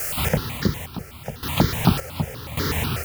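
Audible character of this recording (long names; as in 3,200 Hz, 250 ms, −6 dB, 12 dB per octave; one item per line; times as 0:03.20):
a quantiser's noise floor 6 bits, dither triangular
sample-and-hold tremolo, depth 90%
notches that jump at a steady rate 8.1 Hz 990–2,600 Hz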